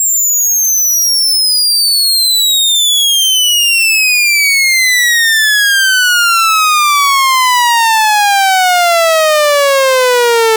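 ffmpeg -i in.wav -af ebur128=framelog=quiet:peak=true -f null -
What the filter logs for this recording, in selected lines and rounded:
Integrated loudness:
  I:          -7.4 LUFS
  Threshold: -17.4 LUFS
Loudness range:
  LRA:         1.5 LU
  Threshold: -27.3 LUFS
  LRA low:    -8.2 LUFS
  LRA high:   -6.7 LUFS
True peak:
  Peak:       -3.4 dBFS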